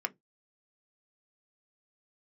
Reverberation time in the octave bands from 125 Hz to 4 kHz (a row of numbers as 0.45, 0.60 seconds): 0.25, 0.20, 0.20, 0.15, 0.10, 0.10 seconds